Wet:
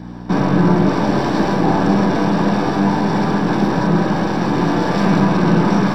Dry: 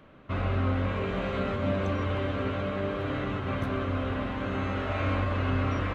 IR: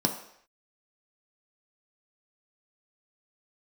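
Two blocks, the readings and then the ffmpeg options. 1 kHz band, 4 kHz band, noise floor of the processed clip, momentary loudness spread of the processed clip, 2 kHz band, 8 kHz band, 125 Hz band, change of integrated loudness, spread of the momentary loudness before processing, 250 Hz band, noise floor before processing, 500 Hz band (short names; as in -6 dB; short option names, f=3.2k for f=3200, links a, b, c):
+15.5 dB, +12.0 dB, -26 dBFS, 3 LU, +10.5 dB, n/a, +11.0 dB, +14.0 dB, 4 LU, +17.5 dB, -41 dBFS, +12.0 dB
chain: -filter_complex "[0:a]aeval=exprs='abs(val(0))':c=same,asplit=2[a][b];[b]alimiter=level_in=3.5dB:limit=-24dB:level=0:latency=1,volume=-3.5dB,volume=1dB[c];[a][c]amix=inputs=2:normalize=0,bandreject=f=50:t=h:w=6,bandreject=f=100:t=h:w=6,bandreject=f=150:t=h:w=6,aeval=exprs='val(0)+0.00891*(sin(2*PI*60*n/s)+sin(2*PI*2*60*n/s)/2+sin(2*PI*3*60*n/s)/3+sin(2*PI*4*60*n/s)/4+sin(2*PI*5*60*n/s)/5)':c=same[d];[1:a]atrim=start_sample=2205[e];[d][e]afir=irnorm=-1:irlink=0"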